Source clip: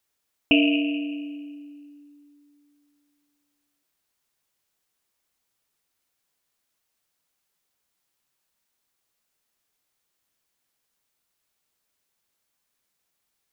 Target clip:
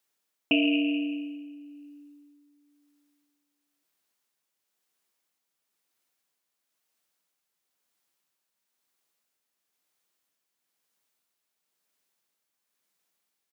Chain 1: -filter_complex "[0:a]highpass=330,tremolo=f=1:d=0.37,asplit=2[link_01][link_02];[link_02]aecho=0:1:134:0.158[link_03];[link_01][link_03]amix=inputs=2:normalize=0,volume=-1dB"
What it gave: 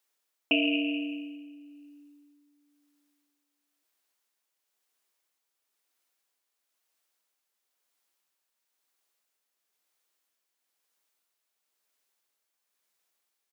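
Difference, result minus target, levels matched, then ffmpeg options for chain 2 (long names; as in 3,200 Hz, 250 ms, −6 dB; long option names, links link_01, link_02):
125 Hz band −7.0 dB
-filter_complex "[0:a]highpass=160,tremolo=f=1:d=0.37,asplit=2[link_01][link_02];[link_02]aecho=0:1:134:0.158[link_03];[link_01][link_03]amix=inputs=2:normalize=0,volume=-1dB"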